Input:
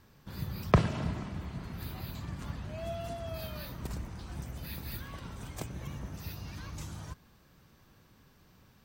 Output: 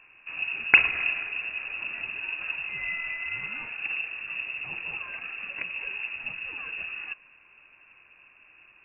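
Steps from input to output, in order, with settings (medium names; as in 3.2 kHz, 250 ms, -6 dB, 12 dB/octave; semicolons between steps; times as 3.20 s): frequency inversion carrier 2.7 kHz; trim +5 dB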